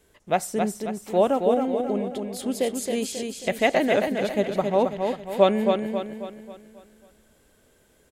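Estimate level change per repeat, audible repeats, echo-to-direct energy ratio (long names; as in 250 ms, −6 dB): −7.0 dB, 5, −4.0 dB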